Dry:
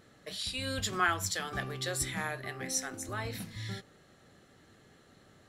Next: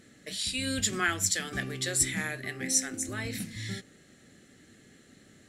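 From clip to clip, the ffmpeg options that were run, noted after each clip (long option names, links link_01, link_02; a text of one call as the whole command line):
ffmpeg -i in.wav -af "equalizer=frequency=250:width_type=o:width=1:gain=8,equalizer=frequency=1000:width_type=o:width=1:gain=-10,equalizer=frequency=2000:width_type=o:width=1:gain=7,equalizer=frequency=8000:width_type=o:width=1:gain=10" out.wav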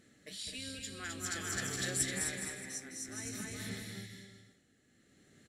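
ffmpeg -i in.wav -filter_complex "[0:a]asplit=2[link_01][link_02];[link_02]aecho=0:1:260|416|509.6|565.8|599.5:0.631|0.398|0.251|0.158|0.1[link_03];[link_01][link_03]amix=inputs=2:normalize=0,tremolo=f=0.53:d=0.69,asplit=2[link_04][link_05];[link_05]aecho=0:1:209:0.501[link_06];[link_04][link_06]amix=inputs=2:normalize=0,volume=-7.5dB" out.wav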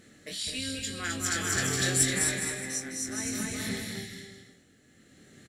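ffmpeg -i in.wav -filter_complex "[0:a]asplit=2[link_01][link_02];[link_02]adelay=23,volume=-6dB[link_03];[link_01][link_03]amix=inputs=2:normalize=0,asplit=2[link_04][link_05];[link_05]volume=25dB,asoftclip=hard,volume=-25dB,volume=-10dB[link_06];[link_04][link_06]amix=inputs=2:normalize=0,volume=5.5dB" out.wav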